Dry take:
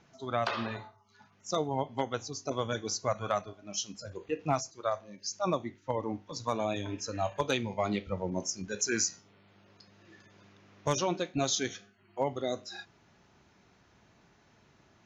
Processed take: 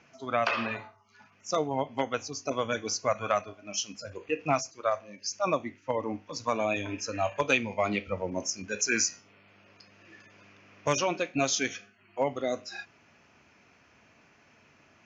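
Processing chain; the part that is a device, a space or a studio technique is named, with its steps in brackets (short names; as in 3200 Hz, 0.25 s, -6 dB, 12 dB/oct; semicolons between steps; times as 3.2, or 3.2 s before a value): car door speaker (speaker cabinet 100–6800 Hz, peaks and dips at 120 Hz -7 dB, 180 Hz -8 dB, 370 Hz -6 dB, 850 Hz -4 dB, 2500 Hz +8 dB, 3800 Hz -9 dB); gain +4.5 dB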